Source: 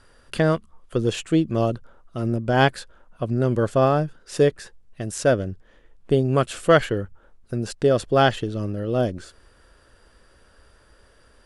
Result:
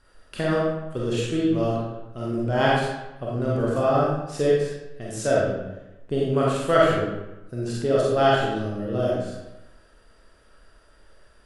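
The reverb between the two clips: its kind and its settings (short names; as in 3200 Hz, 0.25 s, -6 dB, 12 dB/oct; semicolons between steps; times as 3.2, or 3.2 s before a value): digital reverb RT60 0.98 s, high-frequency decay 0.75×, pre-delay 5 ms, DRR -6 dB; gain -8 dB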